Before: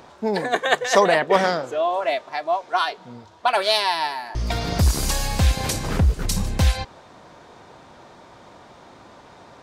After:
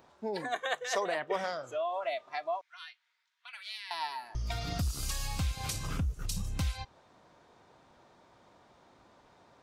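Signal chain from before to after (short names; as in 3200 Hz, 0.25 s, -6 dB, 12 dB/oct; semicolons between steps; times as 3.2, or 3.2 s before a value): spectral noise reduction 9 dB; compressor 2.5:1, threshold -27 dBFS, peak gain reduction 11 dB; 2.61–3.91 ladder high-pass 1700 Hz, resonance 50%; gain -6 dB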